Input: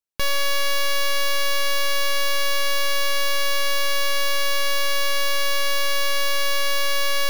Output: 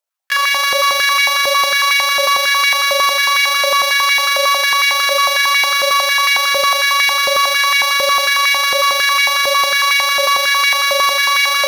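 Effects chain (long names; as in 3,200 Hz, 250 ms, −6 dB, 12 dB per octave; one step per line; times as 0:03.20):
phase distortion by the signal itself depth 0.22 ms
time stretch by overlap-add 1.6×, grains 80 ms
on a send: delay with a high-pass on its return 106 ms, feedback 63%, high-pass 2,000 Hz, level −6 dB
on the sum: high-pass on a step sequencer 11 Hz 600–1,900 Hz
level +7 dB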